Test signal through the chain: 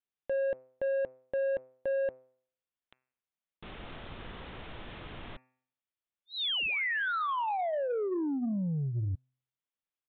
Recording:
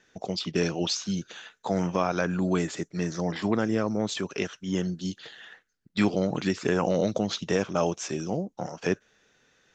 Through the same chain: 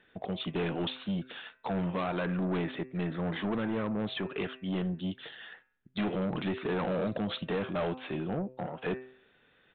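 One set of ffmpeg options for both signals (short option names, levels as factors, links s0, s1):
-af "bandreject=f=128.7:t=h:w=4,bandreject=f=257.4:t=h:w=4,bandreject=f=386.1:t=h:w=4,bandreject=f=514.8:t=h:w=4,bandreject=f=643.5:t=h:w=4,bandreject=f=772.2:t=h:w=4,bandreject=f=900.9:t=h:w=4,bandreject=f=1029.6:t=h:w=4,bandreject=f=1158.3:t=h:w=4,bandreject=f=1287:t=h:w=4,bandreject=f=1415.7:t=h:w=4,bandreject=f=1544.4:t=h:w=4,bandreject=f=1673.1:t=h:w=4,bandreject=f=1801.8:t=h:w=4,bandreject=f=1930.5:t=h:w=4,bandreject=f=2059.2:t=h:w=4,bandreject=f=2187.9:t=h:w=4,bandreject=f=2316.6:t=h:w=4,bandreject=f=2445.3:t=h:w=4,bandreject=f=2574:t=h:w=4,bandreject=f=2702.7:t=h:w=4,aresample=8000,asoftclip=type=tanh:threshold=0.0447,aresample=44100"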